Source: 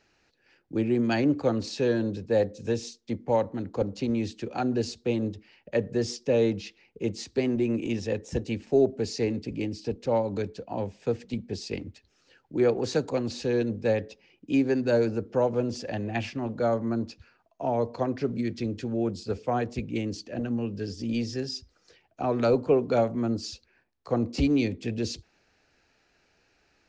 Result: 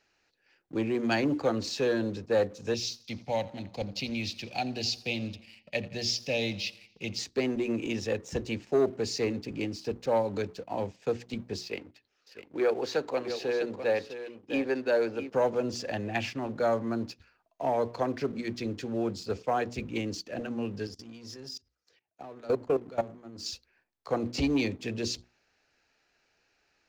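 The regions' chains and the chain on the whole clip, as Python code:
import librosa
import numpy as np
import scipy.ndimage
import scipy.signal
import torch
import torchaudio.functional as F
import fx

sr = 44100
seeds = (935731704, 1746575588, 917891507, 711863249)

y = fx.chain(x, sr, fx.curve_eq(hz=(180.0, 430.0, 710.0, 1300.0, 2300.0, 5000.0, 8400.0), db=(0, -12, 0, -18, 6, 7, -7)),
    fx.echo_feedback(ms=85, feedback_pct=58, wet_db=-19.0), at=(2.74, 7.19))
y = fx.chain(y, sr, fx.lowpass(hz=5500.0, slope=12),
    fx.bass_treble(bass_db=-11, treble_db=-4),
    fx.echo_single(ms=654, db=-10.5), at=(11.61, 15.3))
y = fx.chain(y, sr, fx.highpass(hz=60.0, slope=12),
    fx.dynamic_eq(hz=2400.0, q=0.74, threshold_db=-42.0, ratio=4.0, max_db=-4),
    fx.level_steps(step_db=21), at=(20.87, 23.46))
y = fx.hum_notches(y, sr, base_hz=60, count=6)
y = fx.leveller(y, sr, passes=1)
y = fx.low_shelf(y, sr, hz=460.0, db=-6.5)
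y = F.gain(torch.from_numpy(y), -1.5).numpy()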